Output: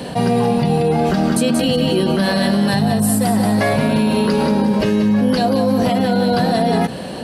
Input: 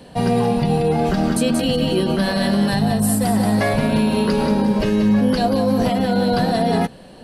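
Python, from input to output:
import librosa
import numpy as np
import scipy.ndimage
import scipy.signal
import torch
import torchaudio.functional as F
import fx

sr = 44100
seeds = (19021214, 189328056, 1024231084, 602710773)

y = scipy.signal.sosfilt(scipy.signal.butter(2, 83.0, 'highpass', fs=sr, output='sos'), x)
y = fx.env_flatten(y, sr, amount_pct=50)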